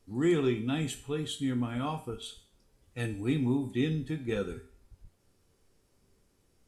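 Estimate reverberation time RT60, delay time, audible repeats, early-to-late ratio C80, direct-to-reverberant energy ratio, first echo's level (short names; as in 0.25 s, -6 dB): 0.45 s, none, none, 16.5 dB, 6.5 dB, none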